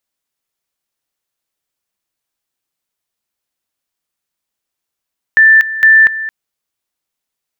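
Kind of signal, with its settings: two-level tone 1770 Hz -3 dBFS, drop 14.5 dB, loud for 0.24 s, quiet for 0.22 s, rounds 2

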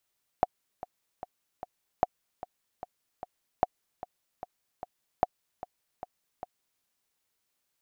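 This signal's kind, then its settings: metronome 150 bpm, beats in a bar 4, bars 4, 730 Hz, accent 16 dB -9 dBFS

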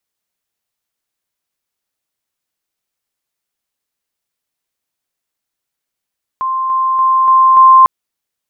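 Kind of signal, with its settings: level ladder 1050 Hz -14 dBFS, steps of 3 dB, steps 5, 0.29 s 0.00 s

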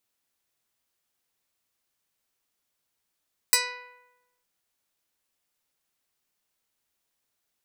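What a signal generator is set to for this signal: plucked string B4, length 0.91 s, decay 1.02 s, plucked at 0.15, medium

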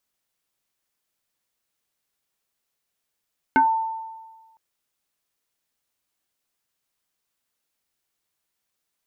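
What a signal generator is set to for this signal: FM tone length 1.01 s, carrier 894 Hz, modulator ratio 0.7, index 1.5, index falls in 0.18 s exponential, decay 1.39 s, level -12 dB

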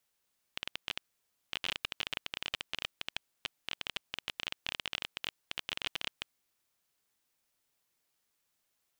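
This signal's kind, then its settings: random clicks 19/s -17 dBFS 5.71 s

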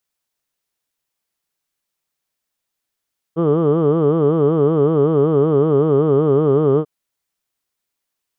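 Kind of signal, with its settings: formant vowel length 3.49 s, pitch 157 Hz, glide -1.5 st, vibrato depth 1.45 st, F1 420 Hz, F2 1200 Hz, F3 3100 Hz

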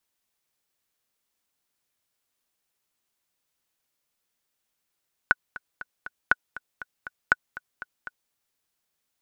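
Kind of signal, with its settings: metronome 239 bpm, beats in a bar 4, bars 3, 1480 Hz, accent 18.5 dB -4 dBFS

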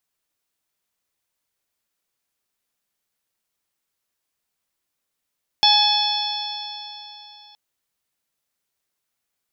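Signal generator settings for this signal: stretched partials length 1.92 s, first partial 834 Hz, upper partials -15/-11/3/-3/-0.5 dB, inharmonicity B 0.0037, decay 3.26 s, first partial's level -17 dB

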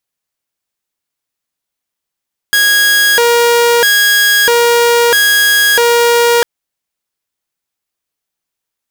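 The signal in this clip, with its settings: siren hi-lo 473–1650 Hz 0.77/s saw -4.5 dBFS 3.90 s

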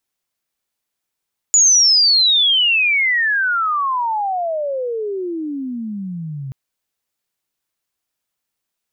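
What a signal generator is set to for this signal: chirp logarithmic 7000 Hz -> 130 Hz -8 dBFS -> -25 dBFS 4.98 s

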